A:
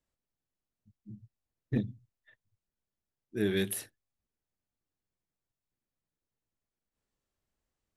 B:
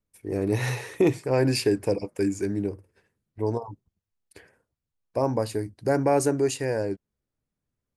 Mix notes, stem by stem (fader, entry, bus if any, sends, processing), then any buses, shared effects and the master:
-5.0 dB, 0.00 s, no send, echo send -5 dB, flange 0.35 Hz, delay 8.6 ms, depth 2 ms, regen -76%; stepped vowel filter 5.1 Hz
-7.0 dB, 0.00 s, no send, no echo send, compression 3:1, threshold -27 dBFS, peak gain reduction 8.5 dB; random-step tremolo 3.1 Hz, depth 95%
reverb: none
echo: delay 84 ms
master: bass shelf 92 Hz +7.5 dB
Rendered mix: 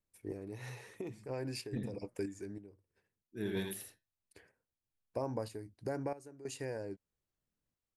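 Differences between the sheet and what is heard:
stem A: missing stepped vowel filter 5.1 Hz; master: missing bass shelf 92 Hz +7.5 dB

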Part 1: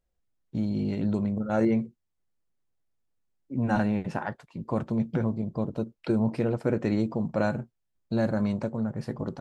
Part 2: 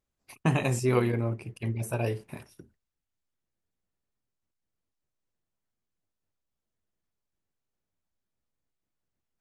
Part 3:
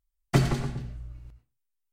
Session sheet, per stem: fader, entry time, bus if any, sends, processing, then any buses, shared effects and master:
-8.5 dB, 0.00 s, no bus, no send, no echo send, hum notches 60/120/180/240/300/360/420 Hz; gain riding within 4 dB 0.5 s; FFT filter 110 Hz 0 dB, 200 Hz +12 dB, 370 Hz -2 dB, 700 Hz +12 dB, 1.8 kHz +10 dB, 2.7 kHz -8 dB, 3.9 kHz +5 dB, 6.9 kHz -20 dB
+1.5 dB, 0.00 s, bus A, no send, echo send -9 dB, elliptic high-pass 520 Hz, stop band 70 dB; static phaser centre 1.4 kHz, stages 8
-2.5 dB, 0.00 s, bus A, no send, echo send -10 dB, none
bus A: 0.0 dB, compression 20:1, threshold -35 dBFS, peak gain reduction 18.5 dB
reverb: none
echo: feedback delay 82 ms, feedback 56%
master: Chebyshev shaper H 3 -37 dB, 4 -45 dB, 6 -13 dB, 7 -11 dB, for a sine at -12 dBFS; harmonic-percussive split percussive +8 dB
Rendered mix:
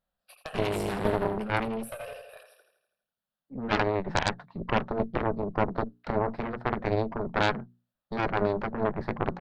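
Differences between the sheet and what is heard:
stem 3: muted; master: missing harmonic-percussive split percussive +8 dB

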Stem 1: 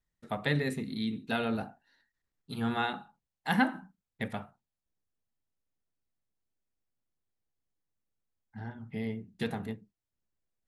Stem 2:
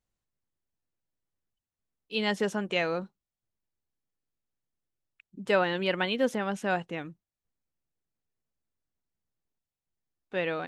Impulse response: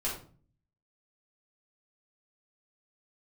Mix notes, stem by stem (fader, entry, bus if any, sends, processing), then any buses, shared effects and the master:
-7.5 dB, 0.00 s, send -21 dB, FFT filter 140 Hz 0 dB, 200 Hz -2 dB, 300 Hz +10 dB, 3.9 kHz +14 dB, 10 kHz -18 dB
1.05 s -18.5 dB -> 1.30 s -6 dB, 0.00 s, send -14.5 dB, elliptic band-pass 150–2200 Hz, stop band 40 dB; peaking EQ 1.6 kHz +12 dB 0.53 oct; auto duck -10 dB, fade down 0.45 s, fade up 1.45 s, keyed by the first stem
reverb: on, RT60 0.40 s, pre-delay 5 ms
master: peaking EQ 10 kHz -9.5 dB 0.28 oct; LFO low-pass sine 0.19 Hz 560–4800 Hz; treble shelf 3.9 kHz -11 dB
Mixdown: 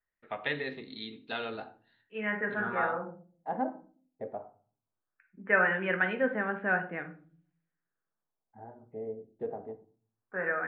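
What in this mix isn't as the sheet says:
stem 1 -7.5 dB -> -15.5 dB; reverb return +6.5 dB

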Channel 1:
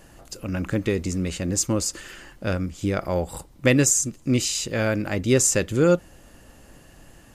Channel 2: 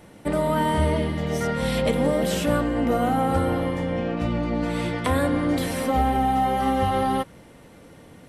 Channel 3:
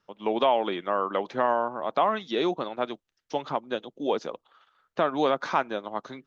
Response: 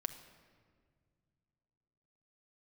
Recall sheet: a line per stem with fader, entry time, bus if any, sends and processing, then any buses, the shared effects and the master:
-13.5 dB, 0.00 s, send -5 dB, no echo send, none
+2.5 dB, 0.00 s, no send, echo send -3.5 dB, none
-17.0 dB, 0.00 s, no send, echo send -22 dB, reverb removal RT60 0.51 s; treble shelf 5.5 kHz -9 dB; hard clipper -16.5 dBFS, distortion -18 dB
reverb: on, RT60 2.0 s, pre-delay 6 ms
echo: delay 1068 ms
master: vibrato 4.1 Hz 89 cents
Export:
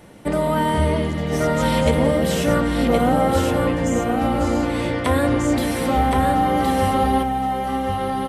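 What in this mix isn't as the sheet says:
stem 1 -13.5 dB -> -19.5 dB; master: missing vibrato 4.1 Hz 89 cents

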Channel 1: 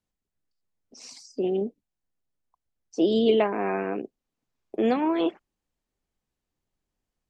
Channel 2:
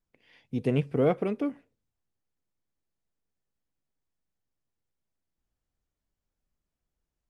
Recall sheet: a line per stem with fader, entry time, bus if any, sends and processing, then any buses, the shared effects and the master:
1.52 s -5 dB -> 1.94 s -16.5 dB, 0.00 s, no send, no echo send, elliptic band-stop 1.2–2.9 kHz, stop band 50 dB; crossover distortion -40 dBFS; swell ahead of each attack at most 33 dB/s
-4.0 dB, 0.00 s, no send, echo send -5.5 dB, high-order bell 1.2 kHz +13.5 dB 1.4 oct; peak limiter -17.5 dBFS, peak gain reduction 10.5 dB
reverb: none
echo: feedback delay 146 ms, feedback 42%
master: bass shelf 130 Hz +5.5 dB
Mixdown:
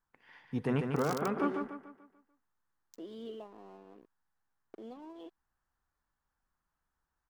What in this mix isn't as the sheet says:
stem 1 -5.0 dB -> -12.0 dB; master: missing bass shelf 130 Hz +5.5 dB

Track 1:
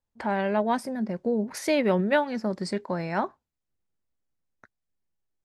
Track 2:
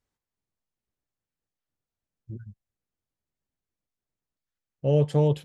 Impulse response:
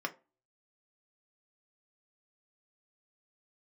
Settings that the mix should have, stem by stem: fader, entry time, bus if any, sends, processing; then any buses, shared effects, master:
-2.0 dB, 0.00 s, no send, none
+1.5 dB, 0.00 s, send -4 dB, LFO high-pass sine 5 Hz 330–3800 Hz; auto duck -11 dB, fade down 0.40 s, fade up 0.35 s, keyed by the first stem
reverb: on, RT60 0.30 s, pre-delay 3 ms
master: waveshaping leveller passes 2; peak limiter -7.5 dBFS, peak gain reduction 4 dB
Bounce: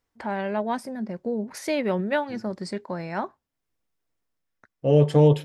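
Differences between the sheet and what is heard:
stem 2: missing LFO high-pass sine 5 Hz 330–3800 Hz; master: missing waveshaping leveller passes 2

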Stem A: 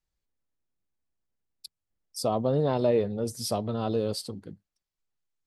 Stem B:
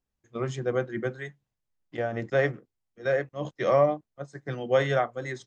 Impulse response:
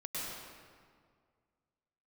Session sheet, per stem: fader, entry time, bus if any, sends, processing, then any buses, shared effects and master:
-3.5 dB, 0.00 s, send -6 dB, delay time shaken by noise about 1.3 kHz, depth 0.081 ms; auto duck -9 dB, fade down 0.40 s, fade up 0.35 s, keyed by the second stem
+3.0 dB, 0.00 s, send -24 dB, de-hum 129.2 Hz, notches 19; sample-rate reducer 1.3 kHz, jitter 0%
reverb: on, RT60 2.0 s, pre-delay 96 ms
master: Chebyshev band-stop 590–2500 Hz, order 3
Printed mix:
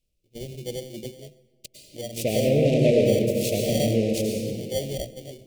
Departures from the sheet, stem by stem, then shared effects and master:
stem A -3.5 dB -> +8.0 dB; stem B +3.0 dB -> -3.5 dB

